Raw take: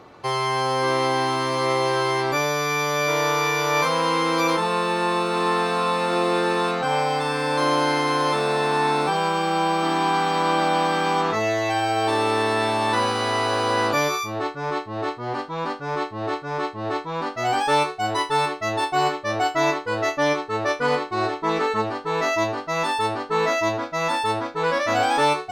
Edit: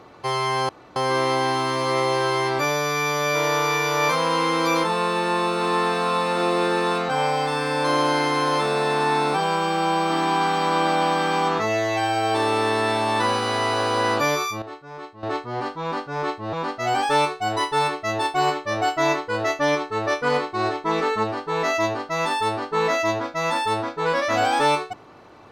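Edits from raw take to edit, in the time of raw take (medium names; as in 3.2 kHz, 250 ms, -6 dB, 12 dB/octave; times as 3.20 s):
0.69 s: insert room tone 0.27 s
14.35–14.96 s: gain -11 dB
16.26–17.11 s: delete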